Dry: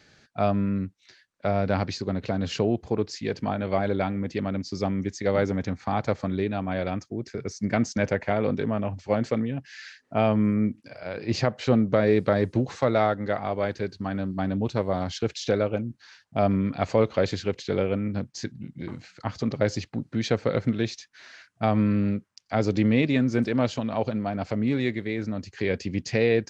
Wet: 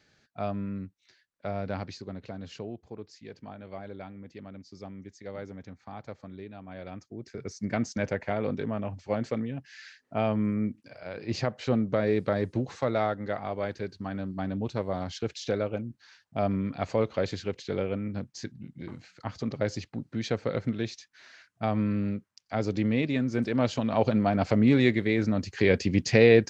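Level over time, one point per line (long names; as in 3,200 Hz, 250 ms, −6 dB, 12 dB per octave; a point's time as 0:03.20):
0:01.70 −8.5 dB
0:02.88 −16 dB
0:06.61 −16 dB
0:07.47 −5 dB
0:23.30 −5 dB
0:24.18 +4 dB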